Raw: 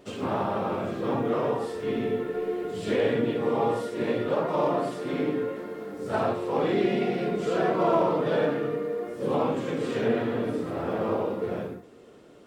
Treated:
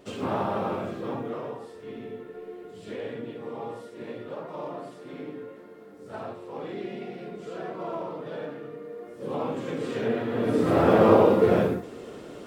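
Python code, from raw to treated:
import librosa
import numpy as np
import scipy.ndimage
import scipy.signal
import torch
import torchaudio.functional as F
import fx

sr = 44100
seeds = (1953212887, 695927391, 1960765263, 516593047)

y = fx.gain(x, sr, db=fx.line((0.67, 0.0), (1.64, -11.0), (8.73, -11.0), (9.7, -2.0), (10.27, -2.0), (10.72, 10.5)))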